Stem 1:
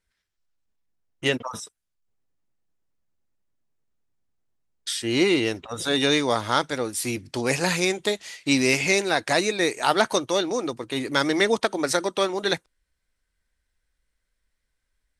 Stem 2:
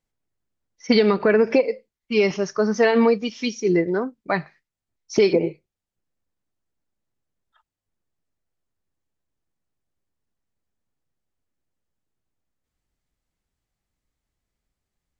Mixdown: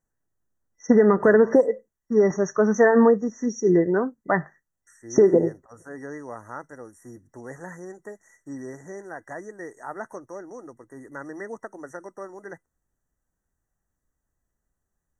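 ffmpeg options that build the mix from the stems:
-filter_complex "[0:a]acrossover=split=4100[a][b];[b]acompressor=threshold=-42dB:ratio=4:attack=1:release=60[c];[a][c]amix=inputs=2:normalize=0,volume=-14dB[d];[1:a]volume=1dB[e];[d][e]amix=inputs=2:normalize=0,afftfilt=real='re*(1-between(b*sr/4096,2000,5600))':imag='im*(1-between(b*sr/4096,2000,5600))':win_size=4096:overlap=0.75"

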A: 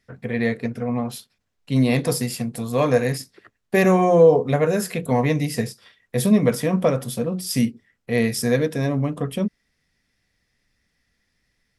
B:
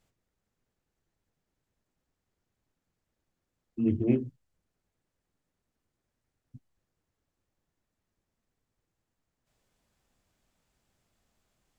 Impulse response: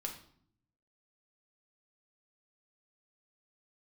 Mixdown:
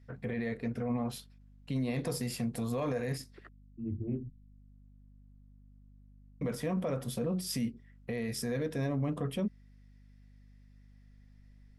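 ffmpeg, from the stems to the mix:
-filter_complex "[0:a]alimiter=limit=-14.5dB:level=0:latency=1:release=367,volume=-4.5dB,asplit=3[a][b][c];[a]atrim=end=3.49,asetpts=PTS-STARTPTS,afade=t=out:st=3.486:d=0.004:c=hsin[d];[b]atrim=start=3.49:end=6.41,asetpts=PTS-STARTPTS,volume=0[e];[c]atrim=start=6.41,asetpts=PTS-STARTPTS,afade=t=in:d=0.004:c=hsin[f];[d][e][f]concat=n=3:v=0:a=1,asplit=2[g][h];[1:a]aemphasis=mode=reproduction:type=riaa,volume=-7.5dB[i];[h]apad=whole_len=519782[j];[i][j]sidechaincompress=threshold=-46dB:ratio=8:attack=16:release=1280[k];[g][k]amix=inputs=2:normalize=0,highshelf=f=4.4k:g=-6,aeval=exprs='val(0)+0.00158*(sin(2*PI*50*n/s)+sin(2*PI*2*50*n/s)/2+sin(2*PI*3*50*n/s)/3+sin(2*PI*4*50*n/s)/4+sin(2*PI*5*50*n/s)/5)':c=same,alimiter=level_in=1.5dB:limit=-24dB:level=0:latency=1:release=19,volume=-1.5dB"

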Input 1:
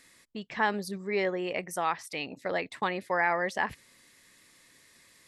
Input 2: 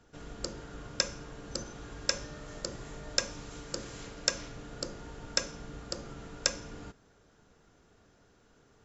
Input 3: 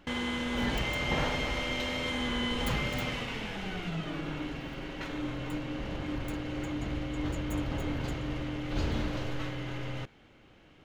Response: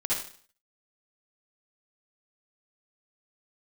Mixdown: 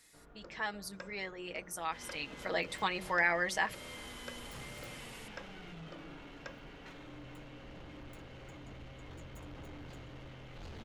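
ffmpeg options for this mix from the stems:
-filter_complex "[0:a]highshelf=f=2.7k:g=10.5,aecho=1:1:6.3:0.57,volume=-5.5dB,afade=t=in:st=2.14:d=0.38:silence=0.421697,asplit=2[a][b];[1:a]lowpass=1.4k,tiltshelf=f=720:g=-4.5,volume=-10.5dB[c];[2:a]bandreject=f=50:t=h:w=6,bandreject=f=100:t=h:w=6,bandreject=f=150:t=h:w=6,bandreject=f=200:t=h:w=6,bandreject=f=250:t=h:w=6,bandreject=f=300:t=h:w=6,asoftclip=type=tanh:threshold=-33.5dB,adelay=1850,volume=-10dB[d];[b]apad=whole_len=559733[e];[d][e]sidechaincompress=threshold=-42dB:ratio=3:attack=16:release=178[f];[a][c][f]amix=inputs=3:normalize=0,bandreject=f=60.96:t=h:w=4,bandreject=f=121.92:t=h:w=4,bandreject=f=182.88:t=h:w=4,bandreject=f=243.84:t=h:w=4,bandreject=f=304.8:t=h:w=4,bandreject=f=365.76:t=h:w=4,bandreject=f=426.72:t=h:w=4,bandreject=f=487.68:t=h:w=4,bandreject=f=548.64:t=h:w=4,bandreject=f=609.6:t=h:w=4"

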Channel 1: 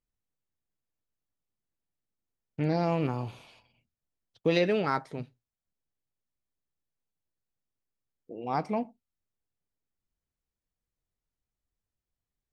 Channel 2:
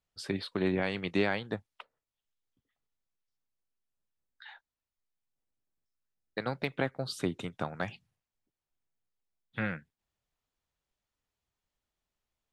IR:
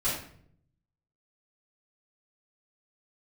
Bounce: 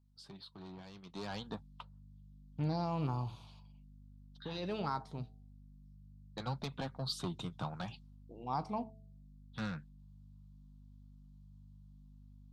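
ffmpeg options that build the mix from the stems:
-filter_complex "[0:a]bandreject=f=109.3:t=h:w=4,bandreject=f=218.6:t=h:w=4,bandreject=f=327.9:t=h:w=4,bandreject=f=437.2:t=h:w=4,bandreject=f=546.5:t=h:w=4,bandreject=f=655.8:t=h:w=4,bandreject=f=765.1:t=h:w=4,alimiter=limit=-19dB:level=0:latency=1:release=32,volume=-5.5dB[a];[1:a]aeval=exprs='val(0)+0.00224*(sin(2*PI*50*n/s)+sin(2*PI*2*50*n/s)/2+sin(2*PI*3*50*n/s)/3+sin(2*PI*4*50*n/s)/4+sin(2*PI*5*50*n/s)/5)':c=same,asoftclip=type=tanh:threshold=-28dB,flanger=delay=4.1:depth=2.3:regen=-53:speed=0.73:shape=sinusoidal,volume=-0.5dB,afade=t=in:st=1.09:d=0.31:silence=0.237137,asplit=2[b][c];[c]apad=whole_len=552511[d];[a][d]sidechaincompress=threshold=-60dB:ratio=8:attack=36:release=298[e];[e][b]amix=inputs=2:normalize=0,equalizer=f=125:t=o:w=1:g=7,equalizer=f=500:t=o:w=1:g=-5,equalizer=f=1k:t=o:w=1:g=10,equalizer=f=2k:t=o:w=1:g=-11,equalizer=f=4k:t=o:w=1:g=9"

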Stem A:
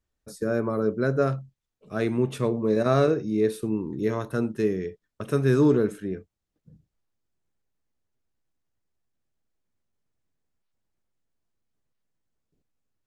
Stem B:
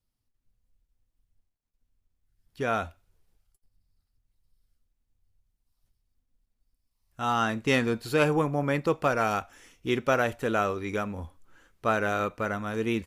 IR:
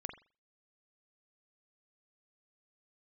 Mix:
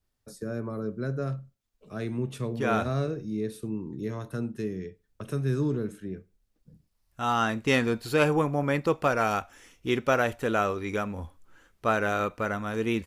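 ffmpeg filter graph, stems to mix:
-filter_complex "[0:a]lowshelf=f=200:g=-4,acrossover=split=200[a][b];[b]acompressor=threshold=-54dB:ratio=1.5[c];[a][c]amix=inputs=2:normalize=0,adynamicequalizer=threshold=0.00251:dfrequency=2500:dqfactor=0.7:tfrequency=2500:tqfactor=0.7:attack=5:release=100:ratio=0.375:range=2:mode=boostabove:tftype=highshelf,volume=-0.5dB,asplit=2[d][e];[e]volume=-11dB[f];[1:a]volume=0.5dB,asplit=3[g][h][i];[g]atrim=end=3.42,asetpts=PTS-STARTPTS,afade=t=out:st=3.416:d=0.004:c=hsin[j];[h]atrim=start=3.42:end=4.95,asetpts=PTS-STARTPTS,volume=0[k];[i]atrim=start=4.95,asetpts=PTS-STARTPTS,afade=t=in:d=0.004:c=hsin[l];[j][k][l]concat=n=3:v=0:a=1[m];[2:a]atrim=start_sample=2205[n];[f][n]afir=irnorm=-1:irlink=0[o];[d][m][o]amix=inputs=3:normalize=0"

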